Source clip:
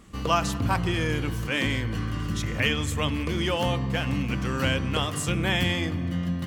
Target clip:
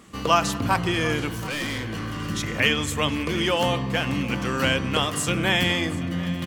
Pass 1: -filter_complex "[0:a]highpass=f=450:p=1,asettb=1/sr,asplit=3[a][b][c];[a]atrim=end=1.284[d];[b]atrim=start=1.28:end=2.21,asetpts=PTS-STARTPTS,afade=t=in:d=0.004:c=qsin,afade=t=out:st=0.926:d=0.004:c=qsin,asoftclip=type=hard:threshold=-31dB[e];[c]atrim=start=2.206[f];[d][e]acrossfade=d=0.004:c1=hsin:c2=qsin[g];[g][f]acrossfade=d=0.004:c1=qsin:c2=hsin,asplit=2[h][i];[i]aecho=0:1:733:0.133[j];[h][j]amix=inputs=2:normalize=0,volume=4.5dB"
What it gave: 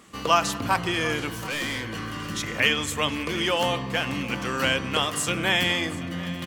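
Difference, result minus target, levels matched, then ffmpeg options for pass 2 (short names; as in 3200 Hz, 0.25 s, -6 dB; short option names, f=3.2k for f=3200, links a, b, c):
250 Hz band -3.0 dB
-filter_complex "[0:a]highpass=f=200:p=1,asettb=1/sr,asplit=3[a][b][c];[a]atrim=end=1.284[d];[b]atrim=start=1.28:end=2.21,asetpts=PTS-STARTPTS,afade=t=in:d=0.004:c=qsin,afade=t=out:st=0.926:d=0.004:c=qsin,asoftclip=type=hard:threshold=-31dB[e];[c]atrim=start=2.206[f];[d][e]acrossfade=d=0.004:c1=hsin:c2=qsin[g];[g][f]acrossfade=d=0.004:c1=qsin:c2=hsin,asplit=2[h][i];[i]aecho=0:1:733:0.133[j];[h][j]amix=inputs=2:normalize=0,volume=4.5dB"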